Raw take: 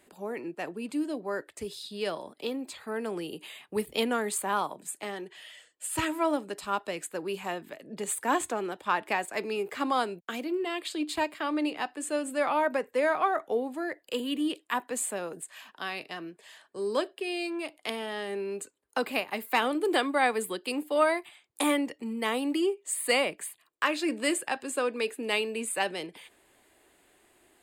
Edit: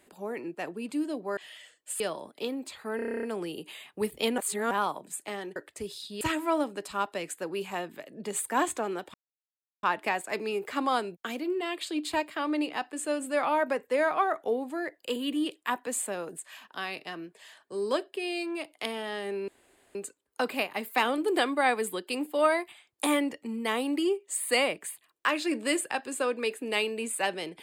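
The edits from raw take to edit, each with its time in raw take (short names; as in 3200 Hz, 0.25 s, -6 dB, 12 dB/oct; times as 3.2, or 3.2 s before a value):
1.37–2.02 swap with 5.31–5.94
2.98 stutter 0.03 s, 10 plays
4.13–4.46 reverse
8.87 insert silence 0.69 s
18.52 insert room tone 0.47 s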